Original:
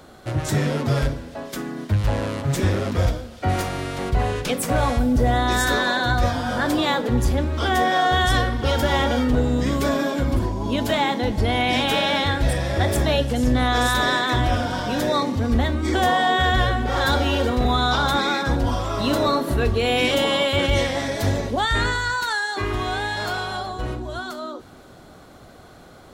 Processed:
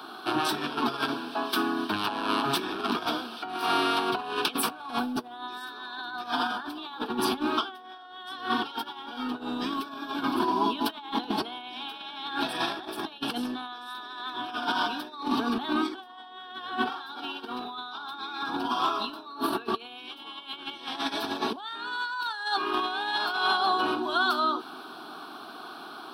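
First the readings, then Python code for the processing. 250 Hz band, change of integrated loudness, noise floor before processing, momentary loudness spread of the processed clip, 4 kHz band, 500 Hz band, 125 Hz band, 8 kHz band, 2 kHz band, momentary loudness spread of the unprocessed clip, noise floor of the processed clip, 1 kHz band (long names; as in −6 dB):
−8.0 dB, −8.5 dB, −45 dBFS, 13 LU, −6.5 dB, −12.0 dB, −27.0 dB, −10.5 dB, −8.5 dB, 7 LU, −45 dBFS, −5.5 dB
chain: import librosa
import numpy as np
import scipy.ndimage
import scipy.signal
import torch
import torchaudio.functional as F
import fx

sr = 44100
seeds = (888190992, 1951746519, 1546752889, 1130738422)

y = scipy.signal.sosfilt(scipy.signal.butter(4, 310.0, 'highpass', fs=sr, output='sos'), x)
y = fx.high_shelf(y, sr, hz=8400.0, db=-8.5)
y = fx.over_compress(y, sr, threshold_db=-30.0, ratio=-0.5)
y = fx.fixed_phaser(y, sr, hz=2000.0, stages=6)
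y = y * librosa.db_to_amplitude(4.5)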